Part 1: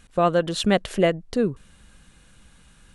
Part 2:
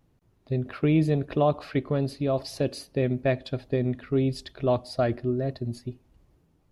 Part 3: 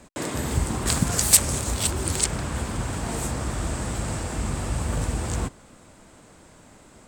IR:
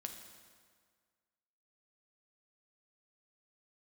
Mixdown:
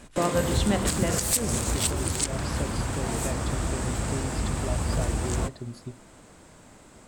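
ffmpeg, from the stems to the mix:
-filter_complex "[0:a]volume=-2dB,asplit=2[a][b];[b]volume=-4.5dB[c];[1:a]volume=-1.5dB[d];[2:a]volume=-0.5dB[e];[a][d]amix=inputs=2:normalize=0,acompressor=threshold=-32dB:ratio=6,volume=0dB[f];[3:a]atrim=start_sample=2205[g];[c][g]afir=irnorm=-1:irlink=0[h];[e][f][h]amix=inputs=3:normalize=0,alimiter=limit=-11.5dB:level=0:latency=1:release=187"

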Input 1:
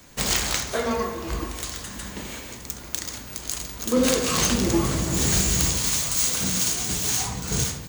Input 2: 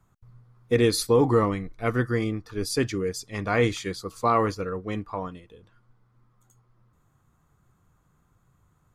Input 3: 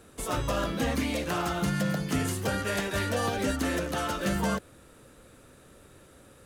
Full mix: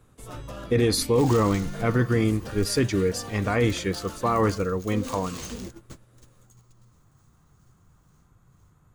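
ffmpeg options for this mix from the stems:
-filter_complex "[0:a]adelay=1000,volume=-16.5dB[a];[1:a]deesser=0.4,alimiter=limit=-17.5dB:level=0:latency=1:release=16,volume=2.5dB,asplit=2[b][c];[2:a]volume=-11.5dB[d];[c]apad=whole_len=391712[e];[a][e]sidechaingate=range=-33dB:threshold=-53dB:ratio=16:detection=peak[f];[f][b][d]amix=inputs=3:normalize=0,lowshelf=f=320:g=4"

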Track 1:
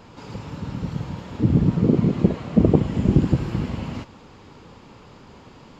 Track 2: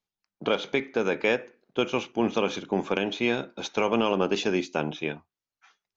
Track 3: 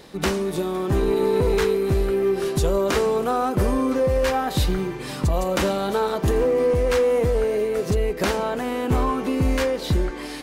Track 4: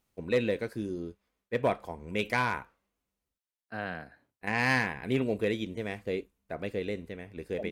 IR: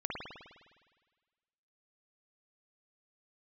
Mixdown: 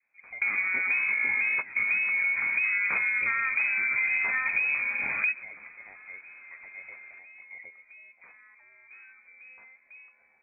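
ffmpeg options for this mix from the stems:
-filter_complex "[0:a]adelay=1400,volume=-8.5dB[a];[1:a]volume=-5dB,asplit=3[b][c][d];[c]volume=-7.5dB[e];[2:a]volume=2dB[f];[3:a]lowshelf=f=280:t=q:w=1.5:g=-12,alimiter=limit=-18.5dB:level=0:latency=1:release=289,volume=-14dB,asplit=2[g][h];[h]volume=-19dB[i];[d]apad=whole_len=459734[j];[f][j]sidechaingate=range=-33dB:threshold=-57dB:ratio=16:detection=peak[k];[e][i]amix=inputs=2:normalize=0,aecho=0:1:128|256|384|512|640|768|896|1024:1|0.52|0.27|0.141|0.0731|0.038|0.0198|0.0103[l];[a][b][k][g][l]amix=inputs=5:normalize=0,adynamicequalizer=threshold=0.00631:dfrequency=1800:dqfactor=2.2:tfrequency=1800:tqfactor=2.2:attack=5:release=100:ratio=0.375:range=1.5:mode=cutabove:tftype=bell,lowpass=f=2.2k:t=q:w=0.5098,lowpass=f=2.2k:t=q:w=0.6013,lowpass=f=2.2k:t=q:w=0.9,lowpass=f=2.2k:t=q:w=2.563,afreqshift=-2600,acompressor=threshold=-25dB:ratio=5"

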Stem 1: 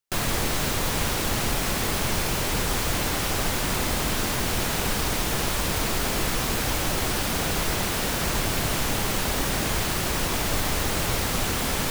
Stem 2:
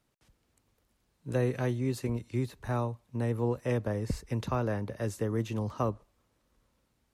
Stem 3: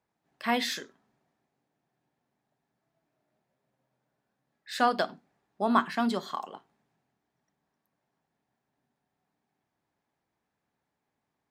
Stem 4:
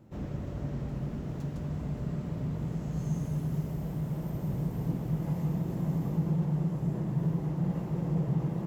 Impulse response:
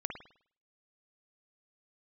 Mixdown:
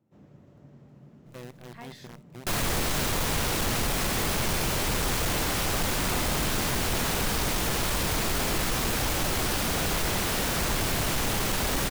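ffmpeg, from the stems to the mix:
-filter_complex "[0:a]asoftclip=type=tanh:threshold=-21dB,adelay=2350,volume=0.5dB[a];[1:a]acrusher=bits=5:dc=4:mix=0:aa=0.000001,volume=-16.5dB[b];[2:a]adelay=1300,volume=-18.5dB[c];[3:a]highpass=120,volume=-15dB[d];[a][b][c][d]amix=inputs=4:normalize=0"

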